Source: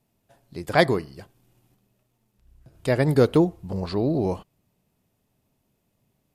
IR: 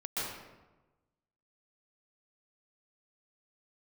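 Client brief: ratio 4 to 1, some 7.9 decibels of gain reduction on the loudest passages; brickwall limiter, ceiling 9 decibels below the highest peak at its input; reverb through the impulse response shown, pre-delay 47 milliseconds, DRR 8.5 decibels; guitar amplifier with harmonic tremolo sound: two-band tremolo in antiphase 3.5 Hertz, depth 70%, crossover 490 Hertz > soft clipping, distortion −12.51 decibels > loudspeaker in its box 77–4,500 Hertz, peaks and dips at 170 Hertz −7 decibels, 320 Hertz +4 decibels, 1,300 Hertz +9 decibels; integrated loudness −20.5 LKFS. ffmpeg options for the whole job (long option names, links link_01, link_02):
-filter_complex "[0:a]acompressor=threshold=-22dB:ratio=4,alimiter=limit=-20dB:level=0:latency=1,asplit=2[link_01][link_02];[1:a]atrim=start_sample=2205,adelay=47[link_03];[link_02][link_03]afir=irnorm=-1:irlink=0,volume=-13.5dB[link_04];[link_01][link_04]amix=inputs=2:normalize=0,acrossover=split=490[link_05][link_06];[link_05]aeval=exprs='val(0)*(1-0.7/2+0.7/2*cos(2*PI*3.5*n/s))':channel_layout=same[link_07];[link_06]aeval=exprs='val(0)*(1-0.7/2-0.7/2*cos(2*PI*3.5*n/s))':channel_layout=same[link_08];[link_07][link_08]amix=inputs=2:normalize=0,asoftclip=threshold=-28.5dB,highpass=77,equalizer=frequency=170:width_type=q:width=4:gain=-7,equalizer=frequency=320:width_type=q:width=4:gain=4,equalizer=frequency=1300:width_type=q:width=4:gain=9,lowpass=frequency=4500:width=0.5412,lowpass=frequency=4500:width=1.3066,volume=16dB"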